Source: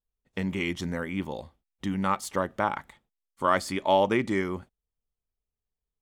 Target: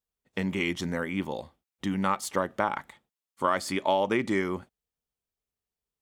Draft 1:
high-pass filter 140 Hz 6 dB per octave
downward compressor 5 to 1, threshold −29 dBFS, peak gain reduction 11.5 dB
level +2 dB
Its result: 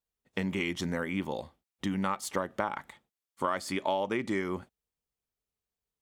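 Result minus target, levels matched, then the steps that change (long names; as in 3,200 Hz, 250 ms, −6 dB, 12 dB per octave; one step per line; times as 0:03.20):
downward compressor: peak gain reduction +5 dB
change: downward compressor 5 to 1, threshold −22.5 dBFS, peak gain reduction 6 dB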